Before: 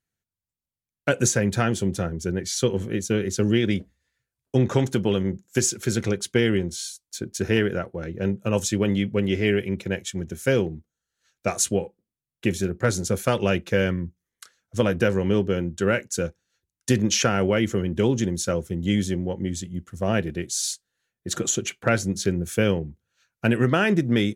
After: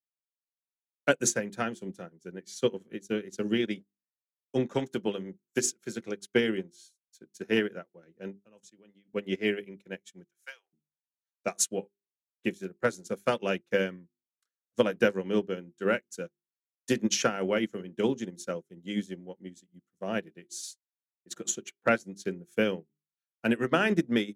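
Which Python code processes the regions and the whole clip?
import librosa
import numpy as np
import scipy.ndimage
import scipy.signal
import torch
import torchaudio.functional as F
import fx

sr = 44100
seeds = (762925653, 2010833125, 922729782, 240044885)

y = fx.chain(x, sr, fx.lowpass(hz=11000.0, slope=12),
    fx.level_steps(step_db=16), at=(8.33, 9.1))
y = fx.chain(y, sr, fx.highpass(hz=890.0, slope=24),
    fx.clip_hard(threshold_db=-17.0), at=(10.24, 10.73))
y = scipy.signal.sosfilt(scipy.signal.butter(4, 170.0, 'highpass', fs=sr, output='sos'), y)
y = fx.hum_notches(y, sr, base_hz=50, count=8)
y = fx.upward_expand(y, sr, threshold_db=-41.0, expansion=2.5)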